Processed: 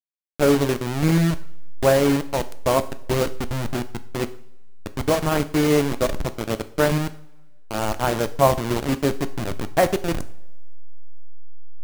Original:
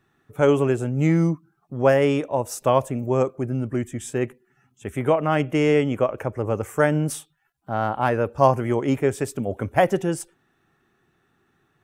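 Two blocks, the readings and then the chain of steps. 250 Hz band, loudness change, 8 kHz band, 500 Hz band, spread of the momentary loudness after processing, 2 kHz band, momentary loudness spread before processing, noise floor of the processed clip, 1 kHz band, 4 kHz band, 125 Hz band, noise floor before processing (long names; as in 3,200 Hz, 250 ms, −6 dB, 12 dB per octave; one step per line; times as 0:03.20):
+0.5 dB, 0.0 dB, +4.0 dB, −1.0 dB, 11 LU, +0.5 dB, 10 LU, −38 dBFS, −1.0 dB, +7.5 dB, 0.0 dB, −68 dBFS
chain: hold until the input has moved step −18 dBFS
coupled-rooms reverb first 0.48 s, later 1.5 s, from −19 dB, DRR 11 dB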